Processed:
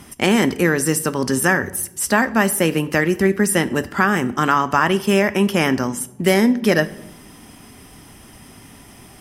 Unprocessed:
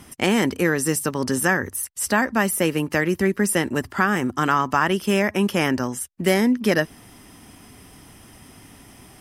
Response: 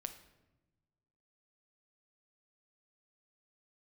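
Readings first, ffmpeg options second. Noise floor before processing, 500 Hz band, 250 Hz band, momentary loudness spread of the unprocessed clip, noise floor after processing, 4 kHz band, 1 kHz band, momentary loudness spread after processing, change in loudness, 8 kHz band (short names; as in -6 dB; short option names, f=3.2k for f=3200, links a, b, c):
-49 dBFS, +3.5 dB, +3.5 dB, 5 LU, -44 dBFS, +3.5 dB, +3.0 dB, 5 LU, +3.5 dB, +3.0 dB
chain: -filter_complex "[0:a]asplit=2[a][b];[1:a]atrim=start_sample=2205,asetrate=57330,aresample=44100[c];[b][c]afir=irnorm=-1:irlink=0,volume=6dB[d];[a][d]amix=inputs=2:normalize=0,volume=-3dB"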